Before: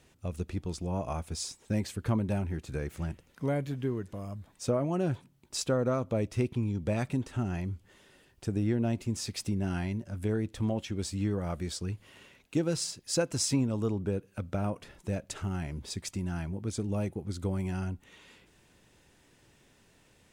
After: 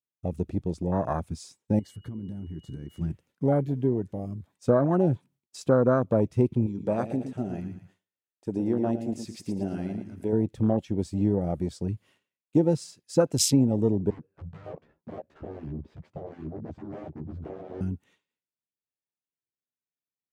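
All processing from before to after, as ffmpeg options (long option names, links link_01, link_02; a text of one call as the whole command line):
ffmpeg -i in.wav -filter_complex "[0:a]asettb=1/sr,asplit=3[link_01][link_02][link_03];[link_01]atrim=end=1.794[link_04];[link_02]atrim=start=1.79:end=3.01,asetpts=PTS-STARTPTS,afade=type=in:duration=0.004:curve=qsin,afade=type=out:start_time=1.216:duration=0.004:curve=qsin,aeval=exprs='val(0)+0.00355*sin(2*PI*2900*n/s)':channel_layout=same,acompressor=threshold=-37dB:ratio=16:attack=3.2:release=140:knee=1:detection=peak,asuperstop=centerf=2500:order=20:qfactor=7.1[link_05];[link_03]atrim=start=3.006[link_06];[link_04][link_05]acrossfade=duration=0.004:curve1=hsin:curve2=qsin[link_07];[link_07][link_06]acrossfade=duration=0.004:curve1=qsin:curve2=hsin,asettb=1/sr,asplit=3[link_08][link_09][link_10];[link_08]atrim=end=6.664[link_11];[link_09]atrim=start=6.66:end=10.33,asetpts=PTS-STARTPTS,afade=type=in:duration=0.004:curve=qsin,afade=type=out:start_time=3.666:duration=0.004:curve=qsin,equalizer=frequency=71:width=0.41:gain=-12.5,aecho=1:1:113|226|339|452|565:0.398|0.183|0.0842|0.0388|0.0178,atrim=end_sample=161847[link_12];[link_10]atrim=start=10.326[link_13];[link_11][link_12]acrossfade=duration=0.004:curve1=hsin:curve2=qsin[link_14];[link_14][link_13]acrossfade=duration=0.004:curve1=qsin:curve2=hsin,asettb=1/sr,asplit=3[link_15][link_16][link_17];[link_15]atrim=end=14.104[link_18];[link_16]atrim=start=14.1:end=17.81,asetpts=PTS-STARTPTS,afade=type=in:duration=0.004:curve=qsin,afade=type=out:start_time=3.706:duration=0.004:curve=qsin,aeval=exprs='0.0141*(abs(mod(val(0)/0.0141+3,4)-2)-1)':channel_layout=same,adynamicsmooth=sensitivity=6:basefreq=1100,asplit=2[link_19][link_20];[link_20]adelay=13,volume=-3dB[link_21];[link_19][link_21]amix=inputs=2:normalize=0,atrim=end_sample=163611[link_22];[link_17]atrim=start=17.806[link_23];[link_18][link_22]acrossfade=duration=0.004:curve1=hsin:curve2=qsin[link_24];[link_24][link_23]acrossfade=duration=0.004:curve1=qsin:curve2=hsin,afwtdn=0.02,agate=range=-33dB:threshold=-56dB:ratio=3:detection=peak,highpass=110,volume=7.5dB" out.wav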